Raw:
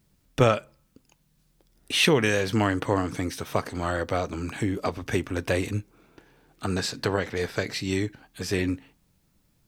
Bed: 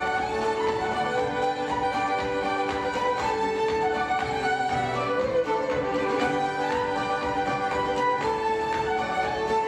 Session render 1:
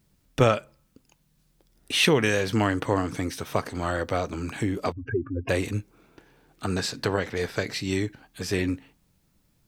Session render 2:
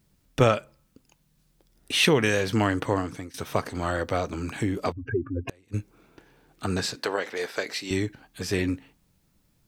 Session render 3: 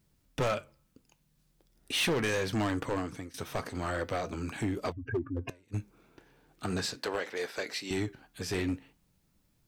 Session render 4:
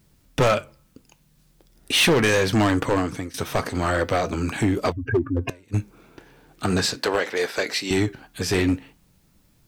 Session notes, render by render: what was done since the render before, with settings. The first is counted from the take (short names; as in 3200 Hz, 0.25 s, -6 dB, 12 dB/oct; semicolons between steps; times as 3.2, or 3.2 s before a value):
4.92–5.49 spectral contrast raised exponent 3.2
2.75–3.34 fade out equal-power, to -21 dB; 5.33–5.74 flipped gate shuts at -18 dBFS, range -33 dB; 6.95–7.91 HPF 380 Hz
overloaded stage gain 21 dB; flange 0.41 Hz, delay 1.9 ms, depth 6.7 ms, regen -86%
gain +11 dB